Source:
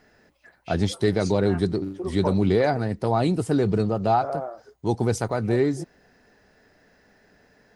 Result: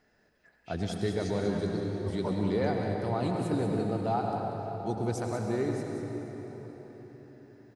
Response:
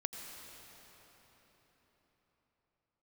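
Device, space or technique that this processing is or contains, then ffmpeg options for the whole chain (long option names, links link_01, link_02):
cave: -filter_complex "[0:a]aecho=1:1:189:0.355[link_01];[1:a]atrim=start_sample=2205[link_02];[link_01][link_02]afir=irnorm=-1:irlink=0,volume=-8.5dB"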